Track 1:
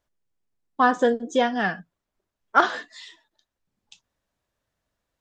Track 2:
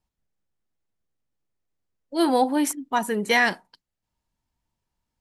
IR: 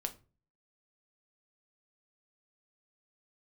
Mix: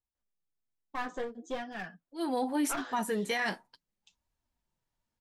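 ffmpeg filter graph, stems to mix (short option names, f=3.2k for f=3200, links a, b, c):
-filter_complex "[0:a]aeval=exprs='clip(val(0),-1,0.0708)':c=same,adelay=150,volume=-10.5dB[a];[1:a]volume=-1.5dB,afade=t=in:st=2.2:d=0.4:silence=0.281838[b];[a][b]amix=inputs=2:normalize=0,flanger=delay=2.3:depth=9.5:regen=-28:speed=0.46:shape=triangular,alimiter=limit=-22.5dB:level=0:latency=1:release=13"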